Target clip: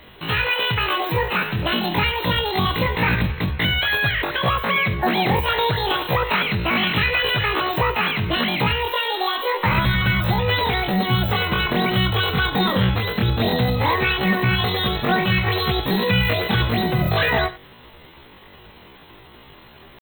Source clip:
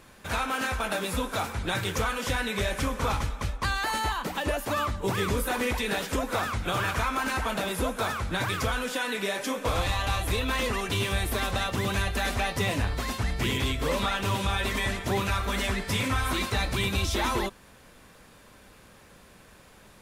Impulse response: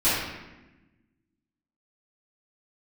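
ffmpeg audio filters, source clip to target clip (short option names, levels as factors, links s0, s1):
-filter_complex "[0:a]asplit=2[s0][s1];[1:a]atrim=start_sample=2205,atrim=end_sample=3969,adelay=23[s2];[s1][s2]afir=irnorm=-1:irlink=0,volume=0.0501[s3];[s0][s3]amix=inputs=2:normalize=0,afftfilt=real='re*(1-between(b*sr/4096,2200,7400))':imag='im*(1-between(b*sr/4096,2200,7400))':win_size=4096:overlap=0.75,asetrate=83250,aresample=44100,atempo=0.529732,volume=2.66"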